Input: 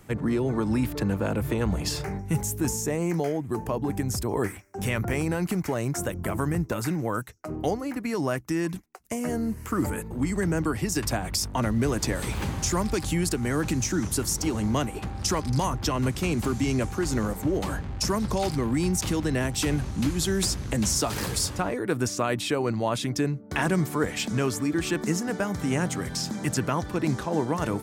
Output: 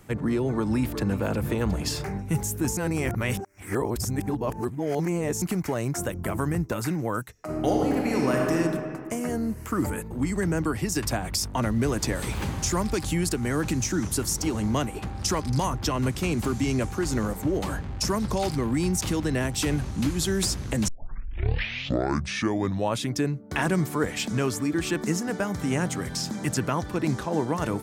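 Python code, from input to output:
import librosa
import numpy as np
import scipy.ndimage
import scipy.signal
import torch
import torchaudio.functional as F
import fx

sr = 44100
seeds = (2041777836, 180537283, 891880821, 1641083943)

y = fx.echo_throw(x, sr, start_s=0.49, length_s=0.72, ms=360, feedback_pct=65, wet_db=-12.0)
y = fx.reverb_throw(y, sr, start_s=7.31, length_s=1.23, rt60_s=2.3, drr_db=-2.5)
y = fx.edit(y, sr, fx.reverse_span(start_s=2.77, length_s=2.65),
    fx.tape_start(start_s=20.88, length_s=2.13), tone=tone)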